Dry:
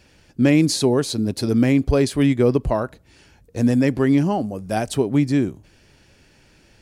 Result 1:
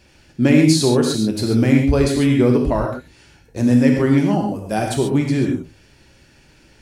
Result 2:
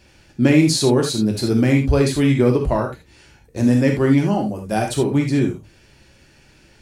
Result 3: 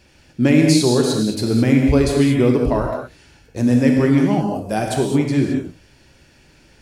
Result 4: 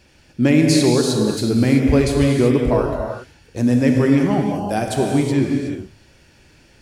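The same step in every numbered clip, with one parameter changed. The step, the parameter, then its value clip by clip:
reverb whose tail is shaped and stops, gate: 160, 100, 240, 400 milliseconds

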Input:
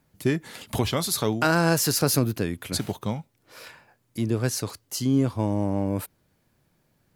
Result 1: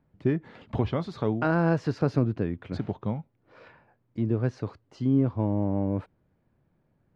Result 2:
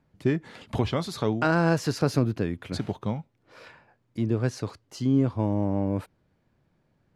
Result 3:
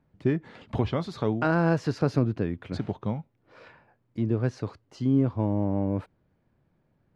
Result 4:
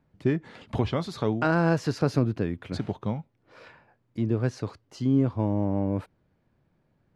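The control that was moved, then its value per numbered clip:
head-to-tape spacing loss, at 10 kHz: 46, 20, 37, 29 decibels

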